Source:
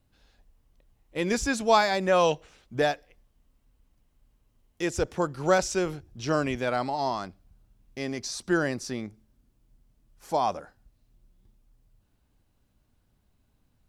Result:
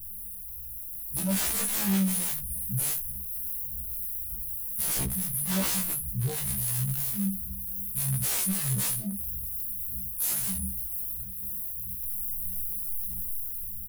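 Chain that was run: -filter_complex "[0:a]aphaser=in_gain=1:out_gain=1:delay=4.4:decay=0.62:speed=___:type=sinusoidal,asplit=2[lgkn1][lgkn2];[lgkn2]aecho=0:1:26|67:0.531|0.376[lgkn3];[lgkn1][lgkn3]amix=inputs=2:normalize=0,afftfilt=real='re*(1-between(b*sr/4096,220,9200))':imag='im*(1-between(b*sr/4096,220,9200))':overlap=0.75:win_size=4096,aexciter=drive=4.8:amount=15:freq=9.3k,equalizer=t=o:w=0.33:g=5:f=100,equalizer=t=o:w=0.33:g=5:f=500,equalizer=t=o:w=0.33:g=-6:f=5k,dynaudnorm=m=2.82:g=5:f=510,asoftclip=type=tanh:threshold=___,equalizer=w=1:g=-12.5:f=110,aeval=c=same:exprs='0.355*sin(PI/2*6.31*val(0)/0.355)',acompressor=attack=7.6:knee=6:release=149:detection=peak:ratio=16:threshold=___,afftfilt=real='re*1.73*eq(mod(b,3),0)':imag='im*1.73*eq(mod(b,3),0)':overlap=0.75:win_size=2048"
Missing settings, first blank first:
1.6, 0.316, 0.0631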